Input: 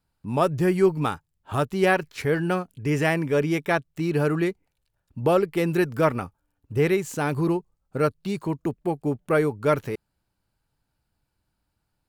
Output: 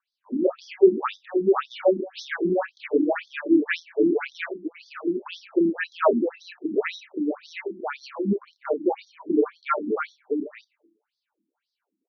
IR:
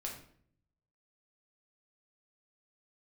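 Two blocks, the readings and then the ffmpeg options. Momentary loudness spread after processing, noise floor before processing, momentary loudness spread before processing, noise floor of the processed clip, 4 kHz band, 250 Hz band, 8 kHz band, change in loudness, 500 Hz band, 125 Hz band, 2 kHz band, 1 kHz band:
11 LU, −78 dBFS, 8 LU, −85 dBFS, −1.5 dB, +1.0 dB, below −10 dB, −1.0 dB, 0.0 dB, −15.5 dB, −3.0 dB, −3.0 dB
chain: -filter_complex "[0:a]lowshelf=frequency=210:gain=10,asplit=2[link_01][link_02];[link_02]adelay=30,volume=-5.5dB[link_03];[link_01][link_03]amix=inputs=2:normalize=0,aecho=1:1:659:0.596,asplit=2[link_04][link_05];[1:a]atrim=start_sample=2205,asetrate=48510,aresample=44100[link_06];[link_05][link_06]afir=irnorm=-1:irlink=0,volume=-9.5dB[link_07];[link_04][link_07]amix=inputs=2:normalize=0,afftfilt=real='re*between(b*sr/1024,250*pow(4700/250,0.5+0.5*sin(2*PI*1.9*pts/sr))/1.41,250*pow(4700/250,0.5+0.5*sin(2*PI*1.9*pts/sr))*1.41)':imag='im*between(b*sr/1024,250*pow(4700/250,0.5+0.5*sin(2*PI*1.9*pts/sr))/1.41,250*pow(4700/250,0.5+0.5*sin(2*PI*1.9*pts/sr))*1.41)':win_size=1024:overlap=0.75,volume=1.5dB"

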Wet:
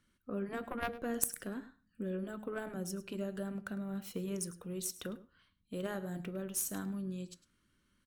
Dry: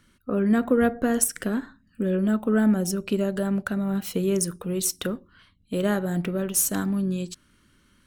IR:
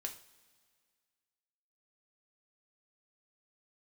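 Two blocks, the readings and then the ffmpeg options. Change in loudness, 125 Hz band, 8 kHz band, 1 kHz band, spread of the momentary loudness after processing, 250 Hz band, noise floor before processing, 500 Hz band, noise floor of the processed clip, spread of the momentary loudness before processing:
−14.5 dB, −14.5 dB, −12.5 dB, −12.0 dB, 10 LU, −16.5 dB, −62 dBFS, −14.5 dB, −76 dBFS, 10 LU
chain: -filter_complex "[0:a]aeval=exprs='0.501*(cos(1*acos(clip(val(0)/0.501,-1,1)))-cos(1*PI/2))+0.2*(cos(3*acos(clip(val(0)/0.501,-1,1)))-cos(3*PI/2))+0.0398*(cos(5*acos(clip(val(0)/0.501,-1,1)))-cos(5*PI/2))':channel_layout=same,aecho=1:1:104:0.141,asplit=2[link_01][link_02];[1:a]atrim=start_sample=2205,afade=type=out:start_time=0.41:duration=0.01,atrim=end_sample=18522,asetrate=70560,aresample=44100[link_03];[link_02][link_03]afir=irnorm=-1:irlink=0,volume=-3.5dB[link_04];[link_01][link_04]amix=inputs=2:normalize=0,afftfilt=real='re*lt(hypot(re,im),0.224)':imag='im*lt(hypot(re,im),0.224)':win_size=1024:overlap=0.75,volume=-2dB"

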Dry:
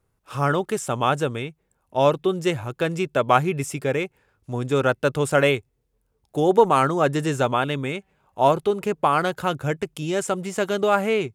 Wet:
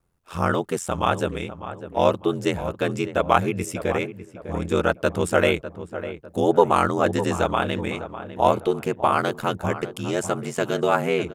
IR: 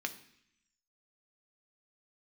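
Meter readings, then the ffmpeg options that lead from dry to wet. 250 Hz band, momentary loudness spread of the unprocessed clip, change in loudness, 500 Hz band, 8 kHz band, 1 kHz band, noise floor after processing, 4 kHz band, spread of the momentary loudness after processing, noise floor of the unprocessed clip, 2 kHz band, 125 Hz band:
0.0 dB, 9 LU, −1.0 dB, −1.0 dB, −1.0 dB, −1.0 dB, −48 dBFS, −1.0 dB, 12 LU, −71 dBFS, −0.5 dB, −2.0 dB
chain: -filter_complex "[0:a]aeval=exprs='val(0)*sin(2*PI*43*n/s)':channel_layout=same,asplit=2[link_01][link_02];[link_02]adelay=601,lowpass=frequency=1600:poles=1,volume=-11.5dB,asplit=2[link_03][link_04];[link_04]adelay=601,lowpass=frequency=1600:poles=1,volume=0.41,asplit=2[link_05][link_06];[link_06]adelay=601,lowpass=frequency=1600:poles=1,volume=0.41,asplit=2[link_07][link_08];[link_08]adelay=601,lowpass=frequency=1600:poles=1,volume=0.41[link_09];[link_01][link_03][link_05][link_07][link_09]amix=inputs=5:normalize=0,volume=2dB"

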